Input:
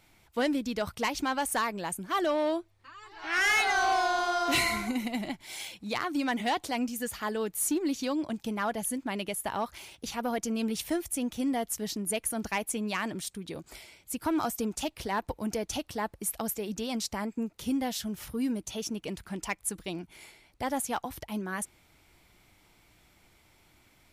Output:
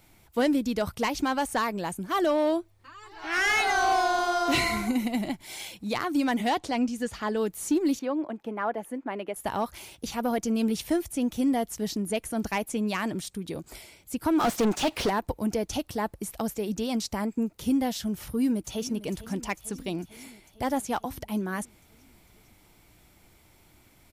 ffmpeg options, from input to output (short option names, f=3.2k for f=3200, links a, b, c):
-filter_complex "[0:a]asettb=1/sr,asplit=3[a][b][c];[a]atrim=end=6.584[d];[b]atrim=start=6.58:end=7.37,asetpts=PTS-STARTPTS,afade=t=in:d=0.004:c=qsin,afade=t=out:st=0.786:d=0.004:c=qsin,lowpass=6.3k[e];[c]atrim=start=7.366[f];[d][e]acrossfade=d=0.004:c1=hsin:c2=qsin[g];[g][f]acrossfade=d=0.004:c1=qsin:c2=hsin,asettb=1/sr,asplit=3[h][i][j];[h]atrim=end=7.994[k];[i]atrim=start=7.99:end=9.36,asetpts=PTS-STARTPTS,afade=t=in:d=0.004:c=qsin,afade=t=out:st=1.366:d=0.004:c=qsin,acrossover=split=270 2400:gain=0.112 1 0.0794[l][m][n];[l][m][n]amix=inputs=3:normalize=0[o];[j]atrim=start=9.356[p];[k][o]acrossfade=d=0.004:c1=hsin:c2=qsin[q];[q][p]acrossfade=d=0.004:c1=qsin:c2=hsin,asplit=3[r][s][t];[r]afade=t=out:st=14.39:d=0.02[u];[s]asplit=2[v][w];[w]highpass=f=720:p=1,volume=28dB,asoftclip=type=tanh:threshold=-20.5dB[x];[v][x]amix=inputs=2:normalize=0,lowpass=f=3.7k:p=1,volume=-6dB,afade=t=in:st=14.39:d=0.02,afade=t=out:st=15.09:d=0.02[y];[t]afade=t=in:st=15.09:d=0.02[z];[u][y][z]amix=inputs=3:normalize=0,asplit=2[aa][ab];[ab]afade=t=in:st=18.19:d=0.01,afade=t=out:st=18.92:d=0.01,aecho=0:1:450|900|1350|1800|2250|2700|3150|3600:0.158489|0.110943|0.0776598|0.0543618|0.0380533|0.0266373|0.0186461|0.0130523[ac];[aa][ac]amix=inputs=2:normalize=0,highshelf=f=7k:g=10,acrossover=split=6500[ad][ae];[ae]acompressor=threshold=-41dB:ratio=4:attack=1:release=60[af];[ad][af]amix=inputs=2:normalize=0,tiltshelf=f=970:g=3.5,volume=2dB"